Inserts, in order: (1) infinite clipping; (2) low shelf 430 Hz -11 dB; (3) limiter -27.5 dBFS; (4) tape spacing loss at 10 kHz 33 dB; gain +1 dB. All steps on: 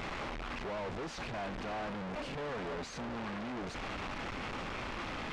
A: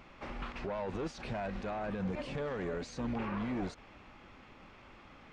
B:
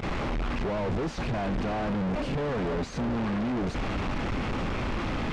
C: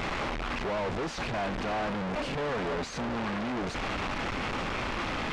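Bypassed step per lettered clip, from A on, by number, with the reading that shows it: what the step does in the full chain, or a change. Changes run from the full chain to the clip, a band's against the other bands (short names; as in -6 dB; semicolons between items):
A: 1, crest factor change +4.5 dB; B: 2, 125 Hz band +8.5 dB; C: 3, mean gain reduction 7.5 dB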